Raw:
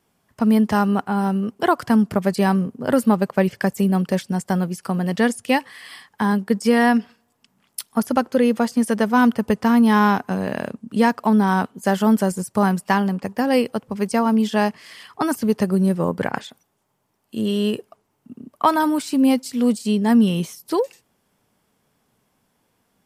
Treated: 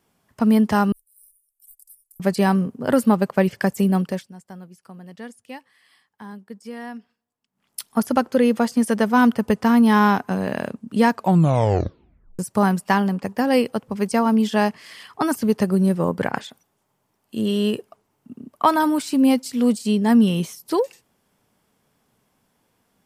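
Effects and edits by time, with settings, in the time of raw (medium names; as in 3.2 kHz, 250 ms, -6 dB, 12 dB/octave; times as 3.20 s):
0.92–2.20 s: inverse Chebyshev band-stop 100–2000 Hz, stop band 80 dB
3.96–7.87 s: dip -18.5 dB, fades 0.35 s
11.12 s: tape stop 1.27 s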